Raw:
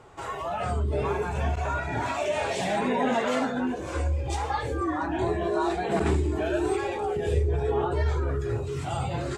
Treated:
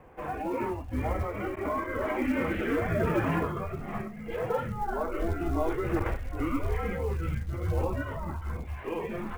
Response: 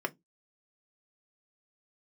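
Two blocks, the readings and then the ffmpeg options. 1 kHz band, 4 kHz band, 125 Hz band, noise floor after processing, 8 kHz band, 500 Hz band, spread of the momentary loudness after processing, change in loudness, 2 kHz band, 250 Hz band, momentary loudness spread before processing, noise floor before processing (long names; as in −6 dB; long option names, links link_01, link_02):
−5.0 dB, −11.0 dB, −4.0 dB, −40 dBFS, −12.0 dB, −4.5 dB, 8 LU, −4.0 dB, −3.0 dB, −1.5 dB, 5 LU, −34 dBFS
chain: -af "equalizer=frequency=120:width=1.9:gain=-13.5,highpass=frequency=350:width_type=q:width=0.5412,highpass=frequency=350:width_type=q:width=1.307,lowpass=frequency=2900:width_type=q:width=0.5176,lowpass=frequency=2900:width_type=q:width=0.7071,lowpass=frequency=2900:width_type=q:width=1.932,afreqshift=-340,acrusher=bits=7:mode=log:mix=0:aa=0.000001"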